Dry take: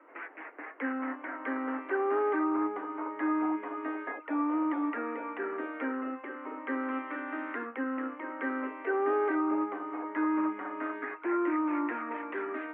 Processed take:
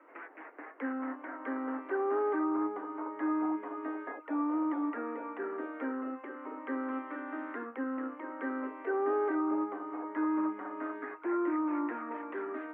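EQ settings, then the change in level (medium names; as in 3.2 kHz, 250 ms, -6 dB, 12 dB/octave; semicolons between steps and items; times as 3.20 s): dynamic bell 2.5 kHz, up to -8 dB, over -53 dBFS, Q 1.1; -1.5 dB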